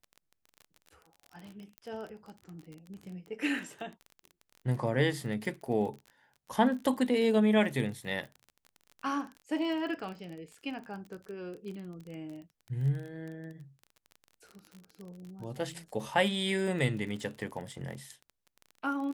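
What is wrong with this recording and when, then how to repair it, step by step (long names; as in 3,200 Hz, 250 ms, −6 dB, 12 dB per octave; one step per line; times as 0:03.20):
surface crackle 29 per second −39 dBFS
0:01.78: click −29 dBFS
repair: click removal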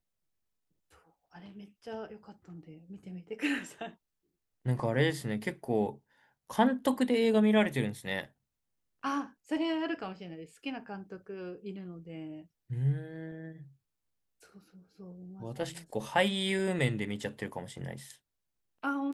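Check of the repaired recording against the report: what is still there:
0:01.78: click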